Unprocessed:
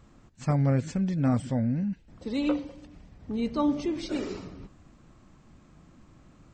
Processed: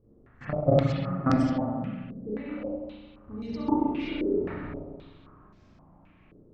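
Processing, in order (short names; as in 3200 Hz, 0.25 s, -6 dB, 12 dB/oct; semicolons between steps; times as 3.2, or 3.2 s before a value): level quantiser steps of 22 dB; spring tank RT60 1.8 s, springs 33/43 ms, chirp 35 ms, DRR -8.5 dB; stepped low-pass 3.8 Hz 420–5300 Hz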